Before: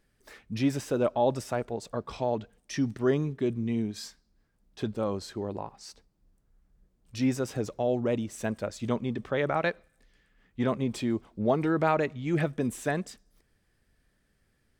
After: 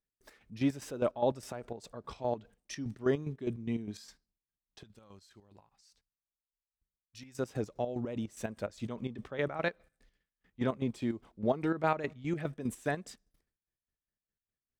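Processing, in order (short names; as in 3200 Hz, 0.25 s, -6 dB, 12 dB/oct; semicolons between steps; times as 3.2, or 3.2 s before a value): chopper 4.9 Hz, depth 65%, duty 45%; gate with hold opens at -55 dBFS; 4.83–7.39 passive tone stack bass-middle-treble 5-5-5; gain -3.5 dB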